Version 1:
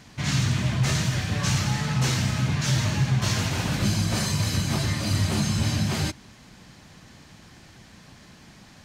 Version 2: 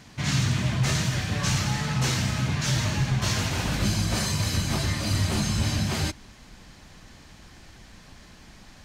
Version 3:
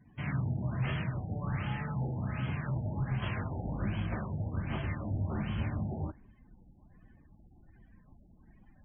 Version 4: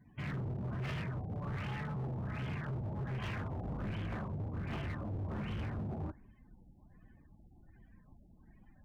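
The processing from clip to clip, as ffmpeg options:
ffmpeg -i in.wav -af "asubboost=boost=5:cutoff=52" out.wav
ffmpeg -i in.wav -af "afftdn=noise_reduction=27:noise_floor=-48,afftfilt=real='re*lt(b*sr/1024,860*pow(3400/860,0.5+0.5*sin(2*PI*1.3*pts/sr)))':imag='im*lt(b*sr/1024,860*pow(3400/860,0.5+0.5*sin(2*PI*1.3*pts/sr)))':win_size=1024:overlap=0.75,volume=-8dB" out.wav
ffmpeg -i in.wav -af "asoftclip=type=hard:threshold=-34dB,volume=-1.5dB" out.wav

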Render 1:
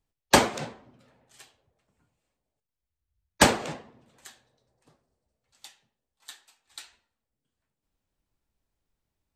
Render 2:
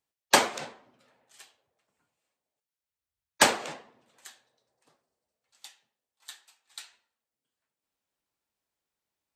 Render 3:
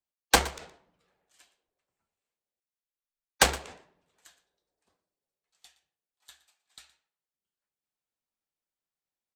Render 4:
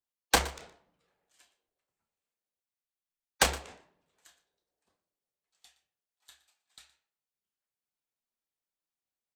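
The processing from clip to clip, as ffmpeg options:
ffmpeg -i in.wav -af "highpass=frequency=620:poles=1" out.wav
ffmpeg -i in.wav -af "aeval=exprs='0.75*(cos(1*acos(clip(val(0)/0.75,-1,1)))-cos(1*PI/2))+0.0596*(cos(6*acos(clip(val(0)/0.75,-1,1)))-cos(6*PI/2))+0.0668*(cos(7*acos(clip(val(0)/0.75,-1,1)))-cos(7*PI/2))':channel_layout=same,afreqshift=-71,aecho=1:1:118:0.126" out.wav
ffmpeg -i in.wav -filter_complex "[0:a]asplit=2[link_01][link_02];[link_02]adelay=30,volume=-10.5dB[link_03];[link_01][link_03]amix=inputs=2:normalize=0,volume=-3.5dB" out.wav

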